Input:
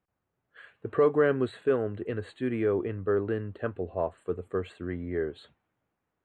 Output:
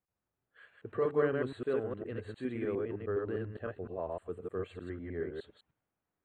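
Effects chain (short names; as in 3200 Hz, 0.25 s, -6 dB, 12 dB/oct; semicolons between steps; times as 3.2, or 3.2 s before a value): reverse delay 0.102 s, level -1.5 dB; gain -9 dB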